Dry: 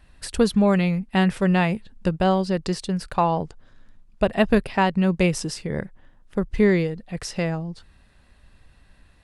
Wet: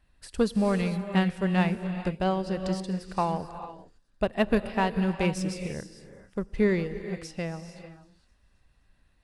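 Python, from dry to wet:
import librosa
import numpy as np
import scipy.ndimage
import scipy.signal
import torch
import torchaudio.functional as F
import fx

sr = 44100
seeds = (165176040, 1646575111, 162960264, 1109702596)

p1 = fx.echo_wet_highpass(x, sr, ms=260, feedback_pct=59, hz=5000.0, wet_db=-20)
p2 = fx.rev_gated(p1, sr, seeds[0], gate_ms=480, shape='rising', drr_db=7.0)
p3 = np.clip(p2, -10.0 ** (-21.0 / 20.0), 10.0 ** (-21.0 / 20.0))
p4 = p2 + (p3 * librosa.db_to_amplitude(-10.0))
p5 = fx.upward_expand(p4, sr, threshold_db=-30.0, expansion=1.5)
y = p5 * librosa.db_to_amplitude(-6.0)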